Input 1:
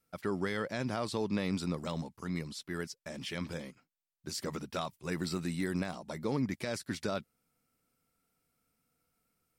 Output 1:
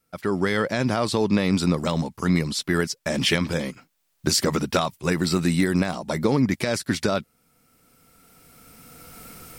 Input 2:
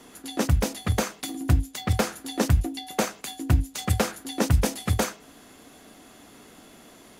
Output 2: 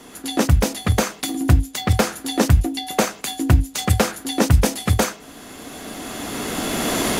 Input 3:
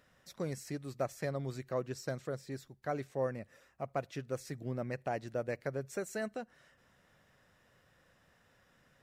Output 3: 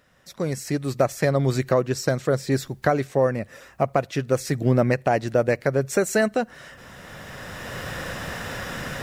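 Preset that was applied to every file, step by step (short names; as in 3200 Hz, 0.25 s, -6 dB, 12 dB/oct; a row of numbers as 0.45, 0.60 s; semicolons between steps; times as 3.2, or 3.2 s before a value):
recorder AGC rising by 12 dB/s; gain +6 dB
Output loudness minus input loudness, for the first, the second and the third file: +13.0, +6.0, +15.5 LU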